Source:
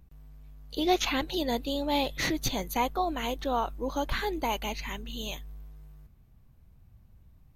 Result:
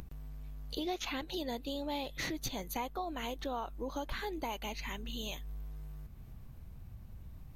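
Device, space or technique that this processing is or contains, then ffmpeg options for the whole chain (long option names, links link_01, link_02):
upward and downward compression: -af "acompressor=mode=upward:threshold=-44dB:ratio=2.5,acompressor=threshold=-42dB:ratio=3,volume=3dB"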